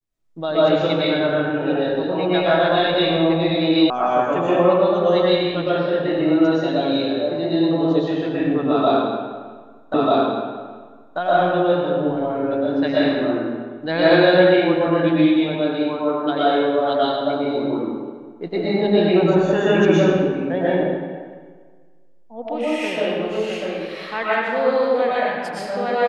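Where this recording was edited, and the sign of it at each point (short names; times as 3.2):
3.9 sound cut off
9.94 repeat of the last 1.24 s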